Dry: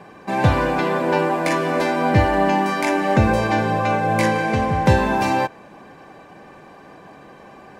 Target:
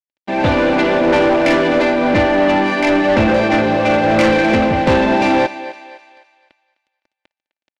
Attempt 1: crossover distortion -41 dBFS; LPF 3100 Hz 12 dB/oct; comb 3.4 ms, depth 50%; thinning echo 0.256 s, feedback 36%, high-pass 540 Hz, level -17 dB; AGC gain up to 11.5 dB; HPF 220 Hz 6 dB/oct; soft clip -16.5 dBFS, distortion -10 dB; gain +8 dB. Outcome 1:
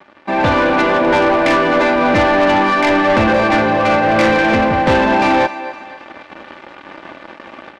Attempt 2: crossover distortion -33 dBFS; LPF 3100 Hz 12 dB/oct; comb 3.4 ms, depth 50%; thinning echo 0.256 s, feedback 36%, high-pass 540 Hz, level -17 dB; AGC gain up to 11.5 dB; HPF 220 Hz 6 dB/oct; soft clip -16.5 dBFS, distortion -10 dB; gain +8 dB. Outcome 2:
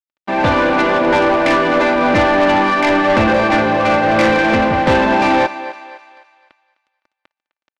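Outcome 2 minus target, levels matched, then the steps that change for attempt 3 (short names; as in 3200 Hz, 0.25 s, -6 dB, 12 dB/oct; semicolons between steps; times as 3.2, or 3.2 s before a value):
1000 Hz band +2.5 dB
add after LPF: bell 1200 Hz -11 dB 0.75 oct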